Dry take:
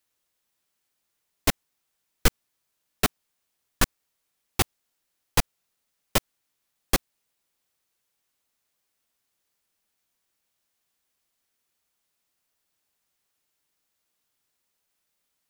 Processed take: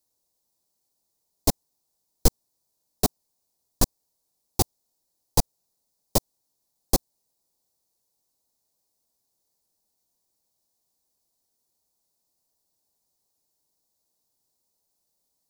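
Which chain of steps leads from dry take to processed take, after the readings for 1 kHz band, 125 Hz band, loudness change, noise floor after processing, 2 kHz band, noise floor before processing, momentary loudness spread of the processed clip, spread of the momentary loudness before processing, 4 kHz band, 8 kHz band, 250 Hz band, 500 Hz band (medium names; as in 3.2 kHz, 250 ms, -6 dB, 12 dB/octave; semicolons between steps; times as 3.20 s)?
-1.0 dB, +2.0 dB, +0.5 dB, -77 dBFS, -14.0 dB, -79 dBFS, 2 LU, 2 LU, -2.0 dB, +2.0 dB, +2.0 dB, +2.0 dB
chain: high-order bell 2 kHz -16 dB; trim +2 dB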